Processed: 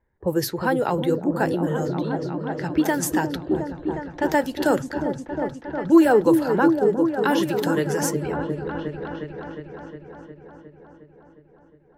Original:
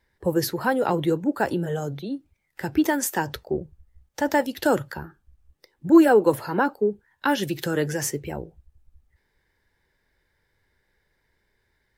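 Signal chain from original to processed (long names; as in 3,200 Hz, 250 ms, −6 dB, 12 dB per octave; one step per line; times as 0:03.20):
echo whose low-pass opens from repeat to repeat 359 ms, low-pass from 400 Hz, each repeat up 1 octave, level −3 dB
low-pass that shuts in the quiet parts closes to 1,100 Hz, open at −19.5 dBFS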